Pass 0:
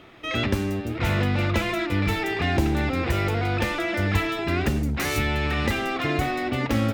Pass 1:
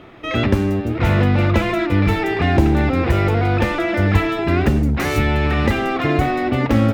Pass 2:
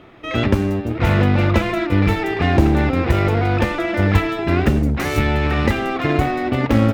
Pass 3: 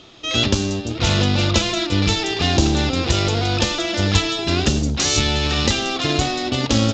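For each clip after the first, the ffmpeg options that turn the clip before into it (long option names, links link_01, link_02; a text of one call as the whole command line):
ffmpeg -i in.wav -af "highshelf=frequency=2300:gain=-10,volume=8dB" out.wav
ffmpeg -i in.wav -af "aeval=exprs='0.794*(cos(1*acos(clip(val(0)/0.794,-1,1)))-cos(1*PI/2))+0.0447*(cos(5*acos(clip(val(0)/0.794,-1,1)))-cos(5*PI/2))+0.0631*(cos(7*acos(clip(val(0)/0.794,-1,1)))-cos(7*PI/2))':channel_layout=same" out.wav
ffmpeg -i in.wav -af "aexciter=amount=7.5:drive=7.5:freq=3100,aresample=16000,aresample=44100,volume=-3dB" out.wav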